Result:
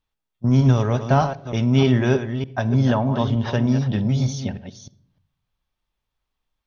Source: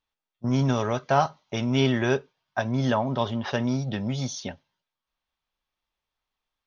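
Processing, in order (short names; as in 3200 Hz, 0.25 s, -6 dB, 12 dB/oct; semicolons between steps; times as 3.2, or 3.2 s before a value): reverse delay 0.305 s, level -9 dB; low shelf 240 Hz +11.5 dB; on a send: reverb RT60 0.55 s, pre-delay 47 ms, DRR 18.5 dB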